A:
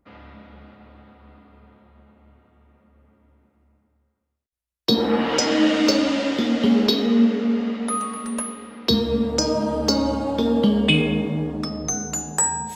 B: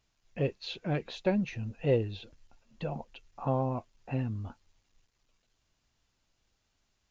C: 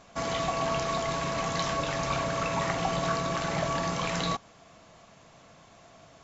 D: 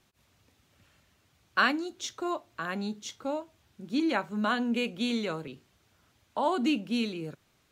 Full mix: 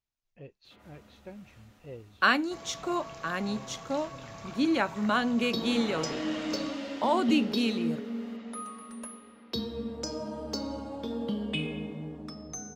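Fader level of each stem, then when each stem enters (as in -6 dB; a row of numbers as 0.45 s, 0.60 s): -14.5 dB, -17.5 dB, -15.0 dB, +1.5 dB; 0.65 s, 0.00 s, 2.35 s, 0.65 s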